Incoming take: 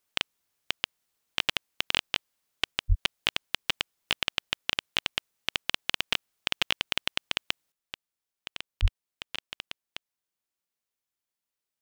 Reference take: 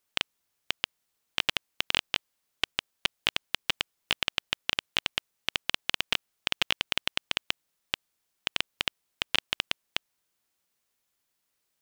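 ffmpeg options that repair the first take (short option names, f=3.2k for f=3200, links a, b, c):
-filter_complex "[0:a]asplit=3[a][b][c];[a]afade=t=out:st=2.88:d=0.02[d];[b]highpass=f=140:w=0.5412,highpass=f=140:w=1.3066,afade=t=in:st=2.88:d=0.02,afade=t=out:st=3:d=0.02[e];[c]afade=t=in:st=3:d=0.02[f];[d][e][f]amix=inputs=3:normalize=0,asplit=3[g][h][i];[g]afade=t=out:st=8.81:d=0.02[j];[h]highpass=f=140:w=0.5412,highpass=f=140:w=1.3066,afade=t=in:st=8.81:d=0.02,afade=t=out:st=8.93:d=0.02[k];[i]afade=t=in:st=8.93:d=0.02[l];[j][k][l]amix=inputs=3:normalize=0,asetnsamples=n=441:p=0,asendcmd='7.72 volume volume 10.5dB',volume=0dB"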